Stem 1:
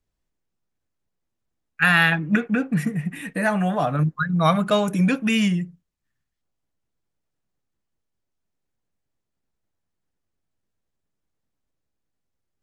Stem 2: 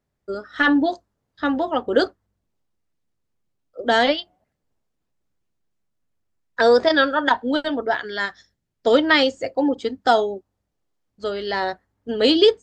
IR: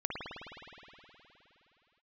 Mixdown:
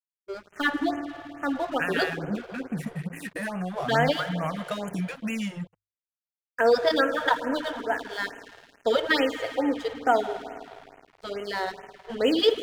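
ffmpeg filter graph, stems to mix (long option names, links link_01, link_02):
-filter_complex "[0:a]bandreject=frequency=83.9:width_type=h:width=4,bandreject=frequency=167.8:width_type=h:width=4,bandreject=frequency=251.7:width_type=h:width=4,bandreject=frequency=335.6:width_type=h:width=4,bandreject=frequency=419.5:width_type=h:width=4,bandreject=frequency=503.4:width_type=h:width=4,bandreject=frequency=587.3:width_type=h:width=4,bandreject=frequency=671.2:width_type=h:width=4,bandreject=frequency=755.1:width_type=h:width=4,bandreject=frequency=839:width_type=h:width=4,bandreject=frequency=922.9:width_type=h:width=4,bandreject=frequency=1006.8:width_type=h:width=4,bandreject=frequency=1090.7:width_type=h:width=4,bandreject=frequency=1174.6:width_type=h:width=4,bandreject=frequency=1258.5:width_type=h:width=4,bandreject=frequency=1342.4:width_type=h:width=4,bandreject=frequency=1426.3:width_type=h:width=4,bandreject=frequency=1510.2:width_type=h:width=4,bandreject=frequency=1594.1:width_type=h:width=4,bandreject=frequency=1678:width_type=h:width=4,acompressor=threshold=-27dB:ratio=6,volume=0.5dB[link_01];[1:a]bandreject=frequency=60:width_type=h:width=6,bandreject=frequency=120:width_type=h:width=6,bandreject=frequency=180:width_type=h:width=6,bandreject=frequency=240:width_type=h:width=6,bandreject=frequency=300:width_type=h:width=6,bandreject=frequency=360:width_type=h:width=6,bandreject=frequency=420:width_type=h:width=6,volume=-6.5dB,asplit=2[link_02][link_03];[link_03]volume=-10.5dB[link_04];[2:a]atrim=start_sample=2205[link_05];[link_04][link_05]afir=irnorm=-1:irlink=0[link_06];[link_01][link_02][link_06]amix=inputs=3:normalize=0,aeval=exprs='sgn(val(0))*max(abs(val(0))-0.00841,0)':channel_layout=same,bandreject=frequency=50:width_type=h:width=6,bandreject=frequency=100:width_type=h:width=6,afftfilt=real='re*(1-between(b*sr/1024,210*pow(4500/210,0.5+0.5*sin(2*PI*2.3*pts/sr))/1.41,210*pow(4500/210,0.5+0.5*sin(2*PI*2.3*pts/sr))*1.41))':imag='im*(1-between(b*sr/1024,210*pow(4500/210,0.5+0.5*sin(2*PI*2.3*pts/sr))/1.41,210*pow(4500/210,0.5+0.5*sin(2*PI*2.3*pts/sr))*1.41))':win_size=1024:overlap=0.75"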